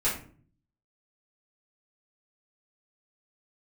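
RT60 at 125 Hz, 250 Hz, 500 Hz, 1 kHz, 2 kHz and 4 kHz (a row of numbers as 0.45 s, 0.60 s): 0.80 s, 0.70 s, 0.50 s, 0.40 s, 0.35 s, 0.30 s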